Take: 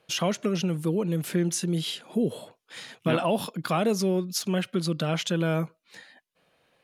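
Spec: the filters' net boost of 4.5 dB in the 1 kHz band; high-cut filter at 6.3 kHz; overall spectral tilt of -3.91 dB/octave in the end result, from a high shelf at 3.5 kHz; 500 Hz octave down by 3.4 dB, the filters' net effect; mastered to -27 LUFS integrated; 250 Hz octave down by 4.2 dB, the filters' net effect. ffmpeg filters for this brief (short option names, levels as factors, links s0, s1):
-af "lowpass=6300,equalizer=f=250:t=o:g=-6,equalizer=f=500:t=o:g=-5,equalizer=f=1000:t=o:g=7.5,highshelf=f=3500:g=6.5,volume=1.19"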